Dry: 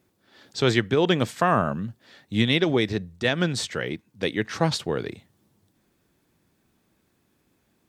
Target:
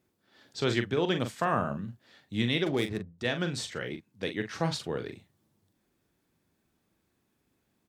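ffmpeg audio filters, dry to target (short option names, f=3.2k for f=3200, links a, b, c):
-filter_complex "[0:a]asplit=2[a][b];[b]adelay=42,volume=-8dB[c];[a][c]amix=inputs=2:normalize=0,asplit=3[d][e][f];[d]afade=t=out:st=2.65:d=0.02[g];[e]adynamicsmooth=sensitivity=6.5:basefreq=1k,afade=t=in:st=2.65:d=0.02,afade=t=out:st=3.18:d=0.02[h];[f]afade=t=in:st=3.18:d=0.02[i];[g][h][i]amix=inputs=3:normalize=0,volume=-7.5dB"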